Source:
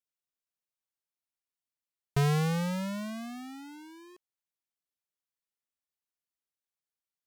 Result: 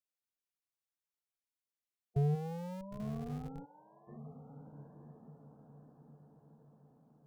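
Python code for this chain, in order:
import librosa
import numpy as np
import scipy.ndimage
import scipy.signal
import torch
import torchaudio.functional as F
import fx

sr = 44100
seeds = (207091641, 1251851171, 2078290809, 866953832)

p1 = fx.spec_gate(x, sr, threshold_db=-15, keep='strong')
p2 = fx.tilt_eq(p1, sr, slope=4.0, at=(2.34, 2.98), fade=0.02)
p3 = fx.echo_diffused(p2, sr, ms=1015, feedback_pct=55, wet_db=-10.0)
p4 = fx.schmitt(p3, sr, flips_db=-35.0)
p5 = p3 + (p4 * 10.0 ** (-6.0 / 20.0))
p6 = fx.bandpass_q(p5, sr, hz=810.0, q=3.2, at=(3.64, 4.07), fade=0.02)
y = p6 * 10.0 ** (-5.0 / 20.0)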